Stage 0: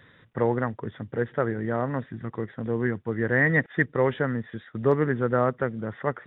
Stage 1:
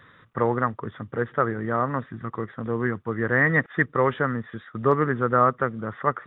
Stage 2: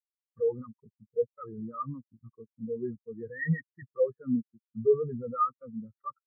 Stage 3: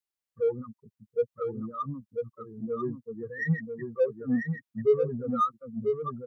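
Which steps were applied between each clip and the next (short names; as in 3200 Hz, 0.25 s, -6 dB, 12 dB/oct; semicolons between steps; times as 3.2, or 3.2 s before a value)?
bell 1200 Hz +11.5 dB 0.48 oct
fuzz box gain 32 dB, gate -40 dBFS; spectral expander 4:1; gain -3 dB
in parallel at -9 dB: soft clip -31 dBFS, distortion -5 dB; on the sum: echo 0.993 s -5.5 dB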